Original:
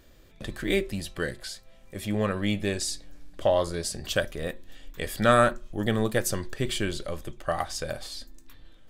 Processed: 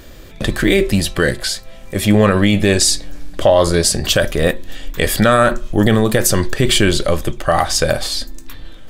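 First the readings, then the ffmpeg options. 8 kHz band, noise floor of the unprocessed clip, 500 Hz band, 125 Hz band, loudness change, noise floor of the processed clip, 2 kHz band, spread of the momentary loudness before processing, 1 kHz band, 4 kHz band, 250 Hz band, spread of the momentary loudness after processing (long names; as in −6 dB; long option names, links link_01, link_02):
+16.5 dB, −53 dBFS, +12.0 dB, +14.5 dB, +13.0 dB, −36 dBFS, +12.5 dB, 15 LU, +10.5 dB, +15.5 dB, +14.5 dB, 10 LU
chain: -af "alimiter=level_in=19dB:limit=-1dB:release=50:level=0:latency=1,volume=-1.5dB"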